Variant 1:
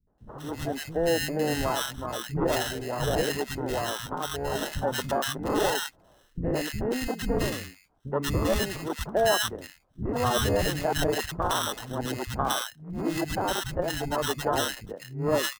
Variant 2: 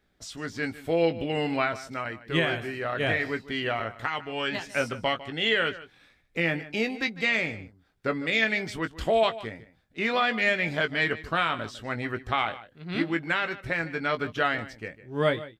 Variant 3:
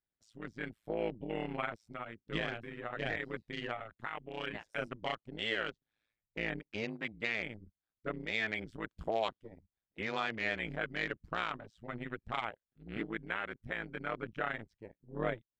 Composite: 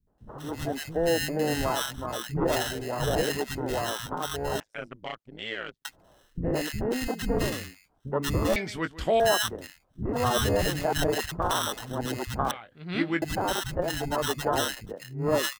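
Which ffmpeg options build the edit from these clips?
-filter_complex "[1:a]asplit=2[a][b];[0:a]asplit=4[c][d][e][f];[c]atrim=end=4.602[g];[2:a]atrim=start=4.598:end=5.852[h];[d]atrim=start=5.848:end=8.562[i];[a]atrim=start=8.558:end=9.202[j];[e]atrim=start=9.198:end=12.512[k];[b]atrim=start=12.508:end=13.222[l];[f]atrim=start=13.218[m];[g][h]acrossfade=d=0.004:c1=hsin:c2=hsin[n];[n][i]acrossfade=d=0.004:c1=hsin:c2=hsin[o];[o][j]acrossfade=d=0.004:c1=hsin:c2=hsin[p];[p][k]acrossfade=d=0.004:c1=hsin:c2=hsin[q];[q][l]acrossfade=d=0.004:c1=hsin:c2=hsin[r];[r][m]acrossfade=d=0.004:c1=hsin:c2=hsin"

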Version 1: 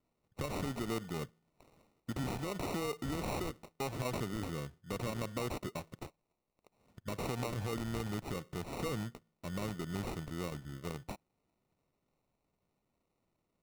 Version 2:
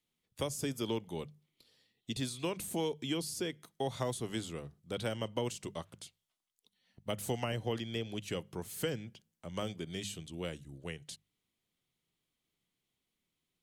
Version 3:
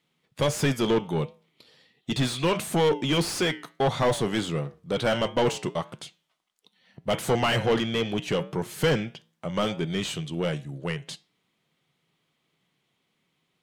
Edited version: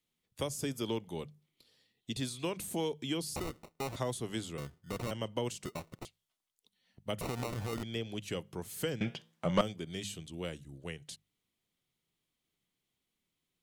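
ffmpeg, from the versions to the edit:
-filter_complex "[0:a]asplit=4[a][b][c][d];[1:a]asplit=6[e][f][g][h][i][j];[e]atrim=end=3.362[k];[a]atrim=start=3.358:end=3.962[l];[f]atrim=start=3.958:end=4.582[m];[b]atrim=start=4.578:end=5.112[n];[g]atrim=start=5.108:end=5.652[o];[c]atrim=start=5.648:end=6.052[p];[h]atrim=start=6.048:end=7.212[q];[d]atrim=start=7.208:end=7.832[r];[i]atrim=start=7.828:end=9.012[s];[2:a]atrim=start=9.008:end=9.612[t];[j]atrim=start=9.608[u];[k][l]acrossfade=d=0.004:c1=hsin:c2=hsin[v];[v][m]acrossfade=d=0.004:c1=hsin:c2=hsin[w];[w][n]acrossfade=d=0.004:c1=hsin:c2=hsin[x];[x][o]acrossfade=d=0.004:c1=hsin:c2=hsin[y];[y][p]acrossfade=d=0.004:c1=hsin:c2=hsin[z];[z][q]acrossfade=d=0.004:c1=hsin:c2=hsin[aa];[aa][r]acrossfade=d=0.004:c1=hsin:c2=hsin[ab];[ab][s]acrossfade=d=0.004:c1=hsin:c2=hsin[ac];[ac][t]acrossfade=d=0.004:c1=hsin:c2=hsin[ad];[ad][u]acrossfade=d=0.004:c1=hsin:c2=hsin"

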